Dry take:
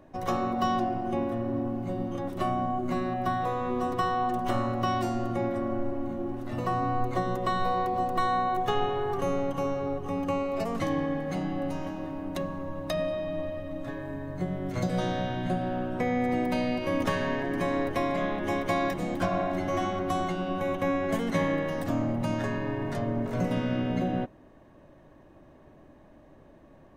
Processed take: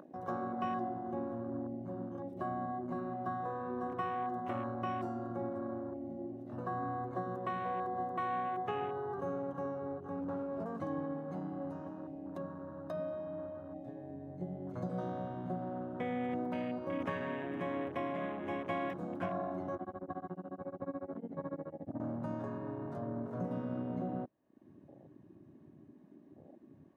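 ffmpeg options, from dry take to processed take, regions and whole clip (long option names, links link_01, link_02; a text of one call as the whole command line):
ffmpeg -i in.wav -filter_complex "[0:a]asettb=1/sr,asplit=3[link_01][link_02][link_03];[link_01]atrim=end=10.214[link_04];[link_02]atrim=start=10.21:end=10.66,asetpts=PTS-STARTPTS,afade=type=in:duration=0.004:curve=qsin,afade=type=out:start_time=0.446:duration=0.004:curve=qsin,tiltshelf=frequency=650:gain=5.5,asoftclip=type=hard:threshold=-25.5dB[link_05];[link_03]atrim=start=10.656[link_06];[link_04][link_05]acrossfade=duration=0.004:curve1=hsin:curve2=qsin[link_07];[link_07][link_06]acrossfade=duration=0.004:curve1=qsin:curve2=hsin,asettb=1/sr,asplit=3[link_08][link_09][link_10];[link_08]atrim=end=19.754[link_11];[link_09]atrim=start=19.75:end=22,asetpts=PTS-STARTPTS,afade=type=in:duration=0.004:curve=qsin,afade=type=out:start_time=2.246:duration=0.004:curve=qsin,aemphasis=mode=reproduction:type=75kf,tremolo=f=14:d=0.89,lowpass=frequency=1500:poles=1[link_12];[link_10]atrim=start=21.996[link_13];[link_11][link_12]acrossfade=duration=0.004:curve1=hsin:curve2=qsin[link_14];[link_14][link_13]acrossfade=duration=0.004:curve1=qsin:curve2=hsin,highpass=110,acompressor=mode=upward:threshold=-34dB:ratio=2.5,afwtdn=0.0178,volume=-9dB" out.wav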